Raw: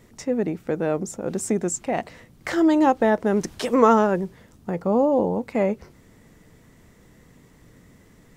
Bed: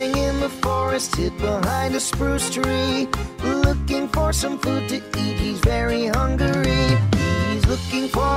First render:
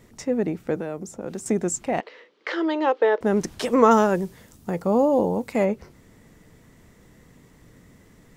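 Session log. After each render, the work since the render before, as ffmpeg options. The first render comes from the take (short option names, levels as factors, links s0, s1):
-filter_complex "[0:a]asettb=1/sr,asplit=3[s0][s1][s2];[s0]atrim=end=0.764[s3];[s1]atrim=start=0.76:end=1.46,asetpts=PTS-STARTPTS,afade=t=in:d=0.004:c=qsin,afade=t=out:st=0.696:d=0.004:c=qsin,acrossover=split=170|1200|7800[s4][s5][s6][s7];[s4]acompressor=threshold=0.00562:ratio=3[s8];[s5]acompressor=threshold=0.0282:ratio=3[s9];[s6]acompressor=threshold=0.00501:ratio=3[s10];[s7]acompressor=threshold=0.00316:ratio=3[s11];[s8][s9][s10][s11]amix=inputs=4:normalize=0[s12];[s2]atrim=start=1.456[s13];[s3][s12]acrossfade=d=0.004:c1=hsin:c2=qsin[s14];[s14][s13]acrossfade=d=0.004:c1=qsin:c2=hsin,asettb=1/sr,asplit=3[s15][s16][s17];[s15]atrim=end=2.004[s18];[s16]atrim=start=2:end=3.21,asetpts=PTS-STARTPTS,afade=t=in:d=0.004:c=qsin,afade=t=out:st=1.206:d=0.004:c=qsin,highpass=f=390:w=0.5412,highpass=f=390:w=1.3066,equalizer=f=450:t=q:w=4:g=7,equalizer=f=710:t=q:w=4:g=-9,equalizer=f=3100:t=q:w=4:g=3,lowpass=f=4600:w=0.5412,lowpass=f=4600:w=1.3066[s19];[s17]atrim=start=3.206[s20];[s18][s19]acrossfade=d=0.004:c1=hsin:c2=qsin[s21];[s21][s20]acrossfade=d=0.004:c1=qsin:c2=hsin,asettb=1/sr,asplit=3[s22][s23][s24];[s22]atrim=end=3.914[s25];[s23]atrim=start=3.91:end=5.65,asetpts=PTS-STARTPTS,afade=t=in:d=0.004:c=qsin,afade=t=out:st=1.736:d=0.004:c=qsin,highshelf=f=4700:g=11[s26];[s24]atrim=start=5.646[s27];[s25][s26]acrossfade=d=0.004:c1=hsin:c2=qsin[s28];[s28][s27]acrossfade=d=0.004:c1=qsin:c2=hsin"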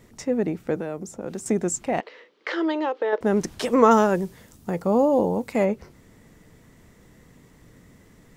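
-filter_complex "[0:a]asettb=1/sr,asplit=3[s0][s1][s2];[s0]atrim=end=2.714[s3];[s1]atrim=start=2.71:end=3.13,asetpts=PTS-STARTPTS,afade=t=in:d=0.004:c=qsin,afade=t=out:st=0.416:d=0.004:c=qsin,acompressor=threshold=0.0794:ratio=3:attack=3.2:release=140:knee=1:detection=peak[s4];[s2]atrim=start=3.126[s5];[s3][s4]acrossfade=d=0.004:c1=hsin:c2=qsin[s6];[s6][s5]acrossfade=d=0.004:c1=qsin:c2=hsin"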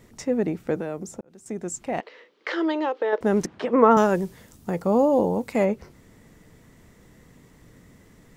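-filter_complex "[0:a]asettb=1/sr,asplit=3[s0][s1][s2];[s0]atrim=end=3.464[s3];[s1]atrim=start=3.46:end=3.97,asetpts=PTS-STARTPTS,afade=t=in:d=0.004:c=qsin,afade=t=out:st=0.506:d=0.004:c=qsin,highpass=160,lowpass=2100[s4];[s2]atrim=start=3.966[s5];[s3][s4]acrossfade=d=0.004:c1=hsin:c2=qsin[s6];[s6][s5]acrossfade=d=0.004:c1=qsin:c2=hsin,asplit=2[s7][s8];[s7]atrim=end=1.21,asetpts=PTS-STARTPTS,afade=t=out:st=1.206:d=0.004:c=hsin[s9];[s8]atrim=start=1.21,asetpts=PTS-STARTPTS,afade=t=in:d=1.47:c=qsin[s10];[s9][s10]concat=n=2:v=0:a=1"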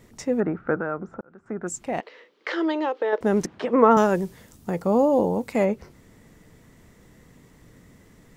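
-filter_complex "[0:a]asettb=1/sr,asplit=3[s0][s1][s2];[s0]atrim=end=0.404[s3];[s1]atrim=start=0.4:end=1.67,asetpts=PTS-STARTPTS,afade=t=in:d=0.004:c=qsin,afade=t=out:st=1.266:d=0.004:c=qsin,lowpass=f=1400:t=q:w=5.9[s4];[s2]atrim=start=1.666[s5];[s3][s4]acrossfade=d=0.004:c1=hsin:c2=qsin[s6];[s6][s5]acrossfade=d=0.004:c1=qsin:c2=hsin"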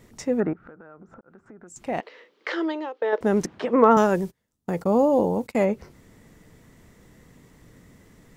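-filter_complex "[0:a]asettb=1/sr,asplit=3[s0][s1][s2];[s0]atrim=end=0.534[s3];[s1]atrim=start=0.53:end=1.76,asetpts=PTS-STARTPTS,afade=t=in:d=0.004:c=qsin,afade=t=out:st=1.226:d=0.004:c=qsin,acompressor=threshold=0.00708:ratio=8:attack=3.2:release=140:knee=1:detection=peak[s4];[s2]atrim=start=1.756[s5];[s3][s4]acrossfade=d=0.004:c1=hsin:c2=qsin[s6];[s6][s5]acrossfade=d=0.004:c1=qsin:c2=hsin,asettb=1/sr,asplit=3[s7][s8][s9];[s7]atrim=end=3.844[s10];[s8]atrim=start=3.84:end=5.64,asetpts=PTS-STARTPTS,afade=t=in:d=0.004:c=qsin,afade=t=out:st=1.796:d=0.004:c=qsin,agate=range=0.0398:threshold=0.01:ratio=16:release=100:detection=peak[s11];[s9]atrim=start=5.636[s12];[s10][s11]acrossfade=d=0.004:c1=hsin:c2=qsin[s13];[s13][s12]acrossfade=d=0.004:c1=qsin:c2=hsin,asplit=2[s14][s15];[s14]atrim=end=3.02,asetpts=PTS-STARTPTS,afade=t=out:st=2.51:d=0.51:silence=0.199526[s16];[s15]atrim=start=3.02,asetpts=PTS-STARTPTS,afade=t=in:d=0.004:c=hsin:silence=0.199526[s17];[s16][s17]concat=n=2:v=0:a=1"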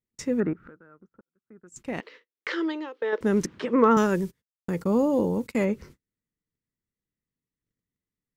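-af "agate=range=0.0112:threshold=0.00562:ratio=16:detection=peak,equalizer=f=720:w=2.1:g=-12.5"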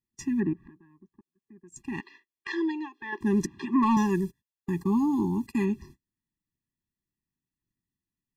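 -af "volume=3.55,asoftclip=hard,volume=0.282,afftfilt=real='re*eq(mod(floor(b*sr/1024/400),2),0)':imag='im*eq(mod(floor(b*sr/1024/400),2),0)':win_size=1024:overlap=0.75"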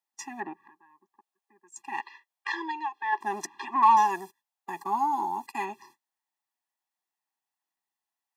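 -filter_complex "[0:a]asplit=2[s0][s1];[s1]asoftclip=type=tanh:threshold=0.0398,volume=0.266[s2];[s0][s2]amix=inputs=2:normalize=0,highpass=f=780:t=q:w=4.9"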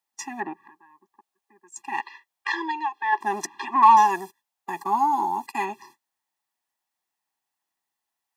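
-af "volume=1.78"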